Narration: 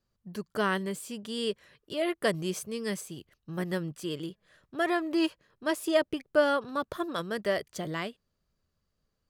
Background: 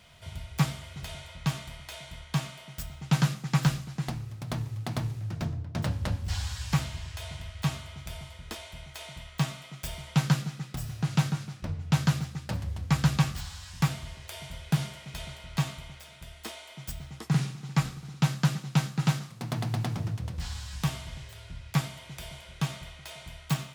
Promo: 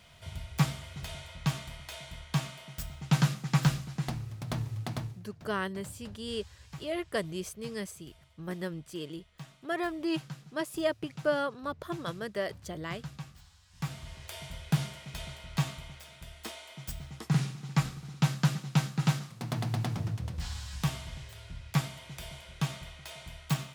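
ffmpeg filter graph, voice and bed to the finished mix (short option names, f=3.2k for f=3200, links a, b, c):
-filter_complex "[0:a]adelay=4900,volume=-4.5dB[a];[1:a]volume=16dB,afade=t=out:st=4.81:d=0.45:silence=0.133352,afade=t=in:st=13.69:d=0.54:silence=0.141254[b];[a][b]amix=inputs=2:normalize=0"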